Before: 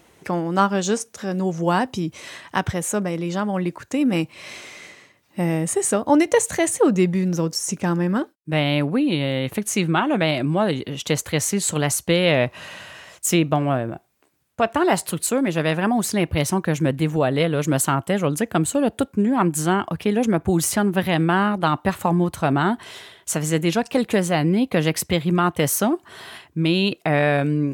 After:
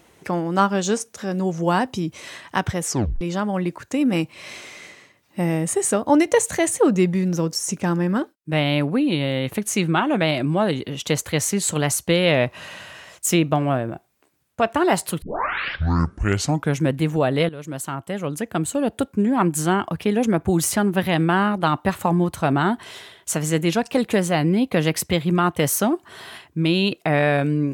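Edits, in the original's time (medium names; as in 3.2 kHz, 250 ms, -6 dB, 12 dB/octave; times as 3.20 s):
2.84 s: tape stop 0.37 s
15.22 s: tape start 1.62 s
17.49–19.27 s: fade in, from -15 dB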